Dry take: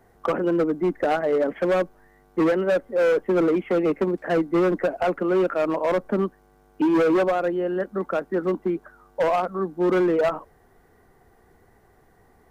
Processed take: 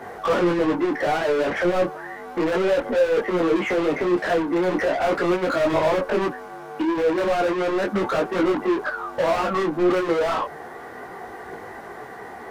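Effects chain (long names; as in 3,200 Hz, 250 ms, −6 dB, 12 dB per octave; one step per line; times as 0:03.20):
low-shelf EQ 120 Hz −4 dB
mid-hump overdrive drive 37 dB, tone 1,800 Hz, clips at −11 dBFS
micro pitch shift up and down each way 12 cents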